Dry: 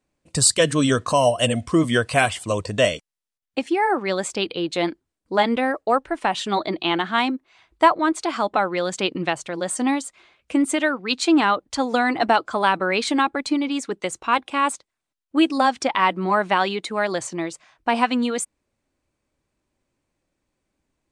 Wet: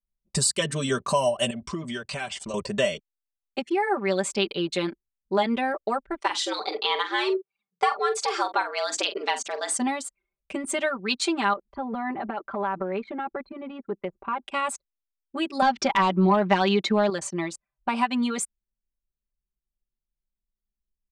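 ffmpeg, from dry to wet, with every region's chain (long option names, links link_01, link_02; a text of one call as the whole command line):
ffmpeg -i in.wav -filter_complex "[0:a]asettb=1/sr,asplit=3[link_01][link_02][link_03];[link_01]atrim=end=1.504[link_04];[link_02]atrim=start=1.5:end=2.54,asetpts=PTS-STARTPTS,afade=type=in:duration=0.004:curve=qsin,afade=type=out:start_time=1.036:duration=0.004:curve=qsin,lowpass=frequency=6600:width=0.5412,lowpass=frequency=6600:width=1.3066,aemphasis=mode=production:type=50kf,acompressor=threshold=-29dB:ratio=4:attack=3.2:release=140:knee=1:detection=peak[link_05];[link_03]atrim=start=2.536[link_06];[link_04][link_05]acrossfade=duration=0.004:curve1=hsin:curve2=qsin[link_07];[link_07][link_06]acrossfade=duration=0.004:curve1=qsin:curve2=hsin,asettb=1/sr,asplit=3[link_08][link_09][link_10];[link_08]atrim=end=6.204[link_11];[link_09]atrim=start=6.2:end=9.77,asetpts=PTS-STARTPTS,afade=type=in:duration=0.004:curve=qsin,afade=type=out:start_time=3.566:duration=0.004:curve=qsin,equalizer=frequency=5500:width_type=o:width=0.97:gain=8,afreqshift=120,asplit=2[link_12][link_13];[link_13]adelay=45,volume=-11dB[link_14];[link_12][link_14]amix=inputs=2:normalize=0,atrim=end_sample=157437[link_15];[link_10]atrim=start=9.766[link_16];[link_11][link_15]acrossfade=duration=0.004:curve1=hsin:curve2=qsin[link_17];[link_17][link_16]acrossfade=duration=0.004:curve1=qsin:curve2=hsin,asettb=1/sr,asplit=3[link_18][link_19][link_20];[link_18]atrim=end=11.534[link_21];[link_19]atrim=start=11.53:end=14.43,asetpts=PTS-STARTPTS,afade=type=in:duration=0.004:curve=qsin,afade=type=out:start_time=2.896:duration=0.004:curve=qsin,lowpass=1500,acompressor=threshold=-26dB:ratio=3:attack=3.2:release=140:knee=1:detection=peak[link_22];[link_20]atrim=start=14.426[link_23];[link_21][link_22]acrossfade=duration=0.004:curve1=hsin:curve2=qsin[link_24];[link_24][link_23]acrossfade=duration=0.004:curve1=qsin:curve2=hsin,asettb=1/sr,asplit=3[link_25][link_26][link_27];[link_25]atrim=end=15.624[link_28];[link_26]atrim=start=15.62:end=17.1,asetpts=PTS-STARTPTS,afade=type=in:duration=0.004:curve=qsin,afade=type=out:start_time=1.476:duration=0.004:curve=qsin,lowpass=frequency=6100:width=0.5412,lowpass=frequency=6100:width=1.3066,equalizer=frequency=150:width_type=o:width=1.6:gain=5.5,acontrast=84[link_29];[link_27]atrim=start=17.096[link_30];[link_28][link_29]acrossfade=duration=0.004:curve1=hsin:curve2=qsin[link_31];[link_31][link_30]acrossfade=duration=0.004:curve1=qsin:curve2=hsin,acompressor=threshold=-21dB:ratio=2.5,anlmdn=1,aecho=1:1:5.1:1,volume=-4dB" out.wav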